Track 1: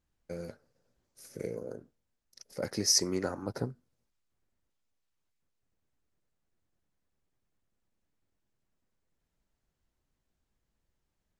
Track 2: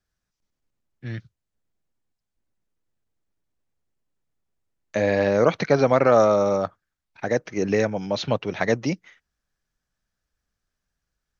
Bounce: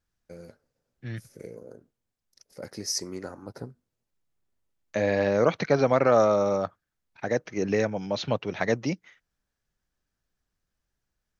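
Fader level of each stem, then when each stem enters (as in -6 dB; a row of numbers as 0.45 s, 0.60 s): -4.5 dB, -3.5 dB; 0.00 s, 0.00 s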